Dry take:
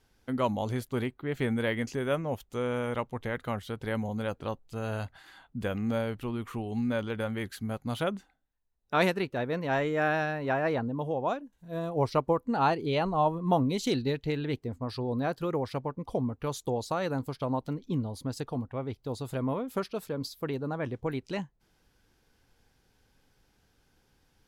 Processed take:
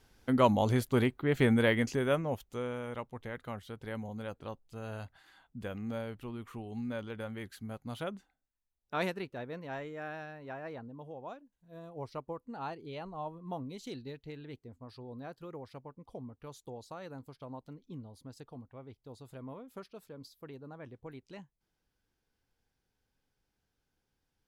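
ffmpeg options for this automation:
ffmpeg -i in.wav -af "volume=3.5dB,afade=type=out:start_time=1.52:duration=1.26:silence=0.266073,afade=type=out:start_time=9.06:duration=0.94:silence=0.473151" out.wav

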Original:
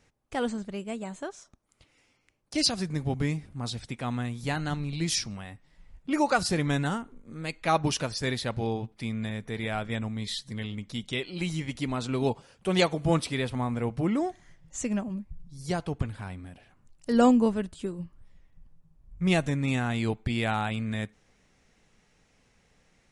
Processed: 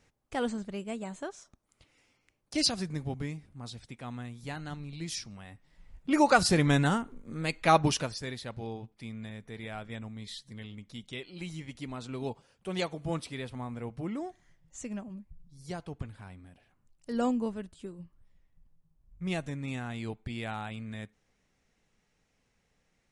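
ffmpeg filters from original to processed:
ffmpeg -i in.wav -af "volume=9.5dB,afade=type=out:start_time=2.65:duration=0.66:silence=0.446684,afade=type=in:start_time=5.31:duration=1.03:silence=0.266073,afade=type=out:start_time=7.72:duration=0.54:silence=0.266073" out.wav

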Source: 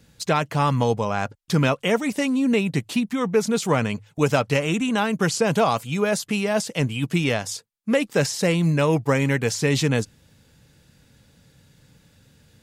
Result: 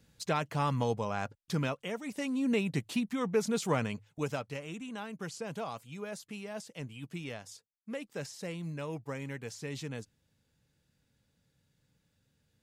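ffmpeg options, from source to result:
ffmpeg -i in.wav -af "volume=-1.5dB,afade=type=out:start_time=1.36:duration=0.6:silence=0.421697,afade=type=in:start_time=1.96:duration=0.55:silence=0.375837,afade=type=out:start_time=3.73:duration=0.78:silence=0.316228" out.wav

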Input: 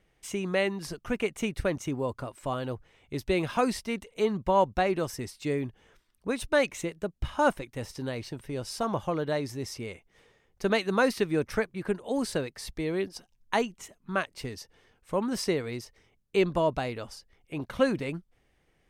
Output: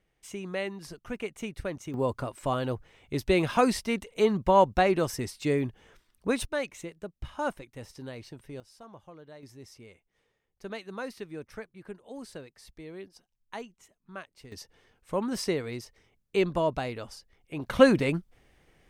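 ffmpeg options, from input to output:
ffmpeg -i in.wav -af "asetnsamples=nb_out_samples=441:pad=0,asendcmd='1.94 volume volume 3dB;6.45 volume volume -7dB;8.6 volume volume -19.5dB;9.43 volume volume -13dB;14.52 volume volume -1dB;17.66 volume volume 6.5dB',volume=-6dB" out.wav

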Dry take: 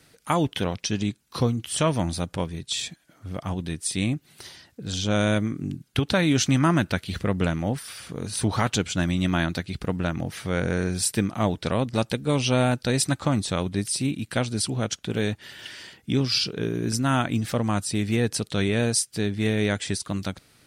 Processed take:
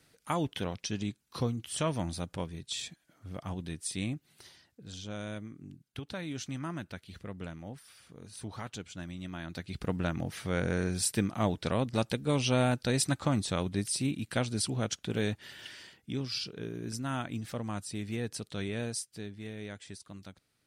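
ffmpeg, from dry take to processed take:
ffmpeg -i in.wav -af "volume=3.5dB,afade=type=out:start_time=3.86:duration=1.31:silence=0.354813,afade=type=in:start_time=9.43:duration=0.41:silence=0.251189,afade=type=out:start_time=15.52:duration=0.6:silence=0.473151,afade=type=out:start_time=18.81:duration=0.63:silence=0.473151" out.wav

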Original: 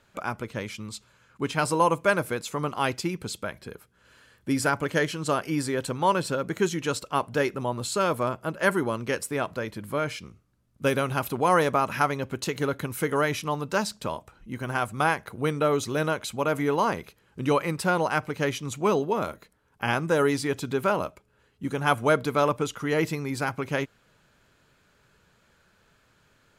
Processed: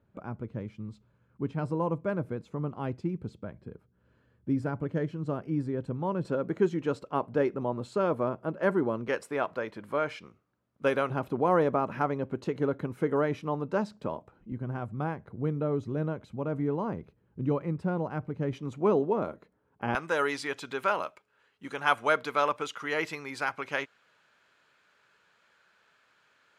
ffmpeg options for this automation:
ffmpeg -i in.wav -af "asetnsamples=nb_out_samples=441:pad=0,asendcmd='6.25 bandpass f 330;9.08 bandpass f 810;11.1 bandpass f 310;14.52 bandpass f 130;18.53 bandpass f 330;19.95 bandpass f 1800',bandpass=frequency=130:width_type=q:width=0.55:csg=0" out.wav

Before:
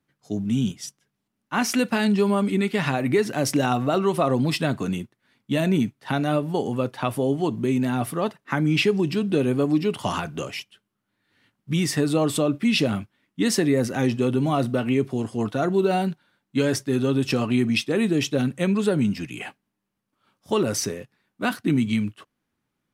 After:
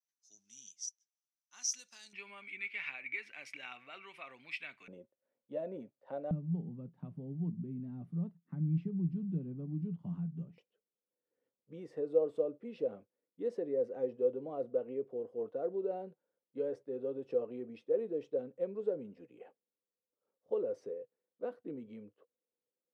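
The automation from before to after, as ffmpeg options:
ffmpeg -i in.wav -af "asetnsamples=nb_out_samples=441:pad=0,asendcmd='2.13 bandpass f 2300;4.88 bandpass f 540;6.31 bandpass f 170;10.58 bandpass f 490',bandpass=frequency=6000:width_type=q:width=12:csg=0" out.wav

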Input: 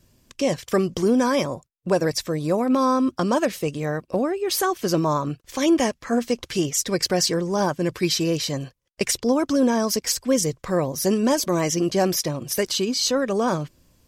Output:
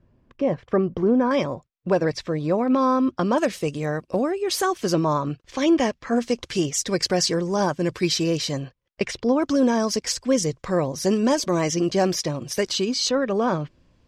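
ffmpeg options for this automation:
ffmpeg -i in.wav -af "asetnsamples=nb_out_samples=441:pad=0,asendcmd='1.31 lowpass f 3600;3.38 lowpass f 9200;4.94 lowpass f 4800;6.16 lowpass f 8100;8.6 lowpass f 3400;9.42 lowpass f 6800;13.09 lowpass f 3400',lowpass=1400" out.wav

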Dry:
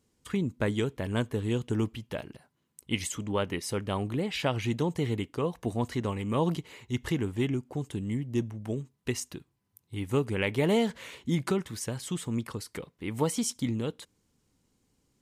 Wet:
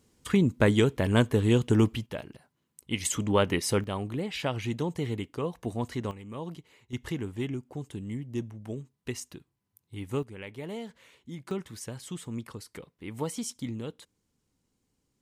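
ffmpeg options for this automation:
ffmpeg -i in.wav -af "asetnsamples=nb_out_samples=441:pad=0,asendcmd='2.06 volume volume -1dB;3.05 volume volume 5.5dB;3.84 volume volume -2dB;6.11 volume volume -11dB;6.93 volume volume -4dB;10.23 volume volume -13dB;11.51 volume volume -5dB',volume=6.5dB" out.wav

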